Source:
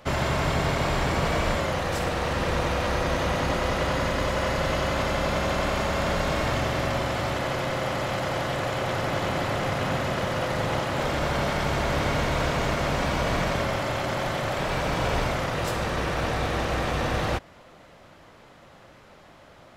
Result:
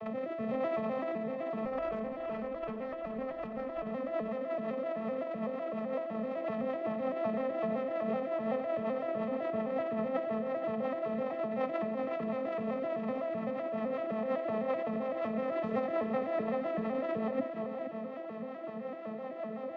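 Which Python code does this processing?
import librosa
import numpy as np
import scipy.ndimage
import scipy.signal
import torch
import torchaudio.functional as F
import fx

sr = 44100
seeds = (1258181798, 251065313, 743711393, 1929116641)

y = fx.vocoder_arp(x, sr, chord='minor triad', root=57, every_ms=127)
y = scipy.signal.sosfilt(scipy.signal.butter(2, 2000.0, 'lowpass', fs=sr, output='sos'), y)
y = fx.low_shelf(y, sr, hz=140.0, db=9.0)
y = fx.notch(y, sr, hz=1500.0, q=6.0)
y = y + 0.63 * np.pad(y, (int(1.6 * sr / 1000.0), 0))[:len(y)]
y = fx.over_compress(y, sr, threshold_db=-35.0, ratio=-1.0)
y = fx.rotary_switch(y, sr, hz=1.0, then_hz=5.5, switch_at_s=1.98)
y = fx.tube_stage(y, sr, drive_db=29.0, bias=0.65, at=(1.65, 3.87))
y = y + 10.0 ** (-9.5 / 20.0) * np.pad(y, (int(472 * sr / 1000.0), 0))[:len(y)]
y = y * 10.0 ** (2.5 / 20.0)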